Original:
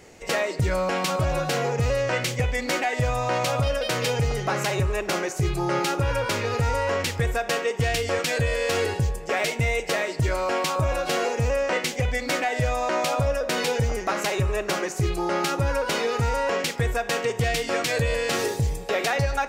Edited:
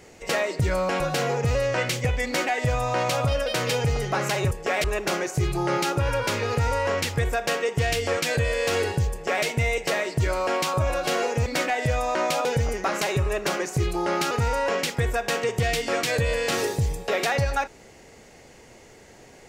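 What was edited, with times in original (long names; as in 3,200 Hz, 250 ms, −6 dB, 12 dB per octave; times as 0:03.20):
0:01.00–0:01.35: remove
0:09.14–0:09.47: duplicate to 0:04.86
0:11.48–0:12.20: remove
0:13.19–0:13.68: remove
0:15.54–0:16.12: remove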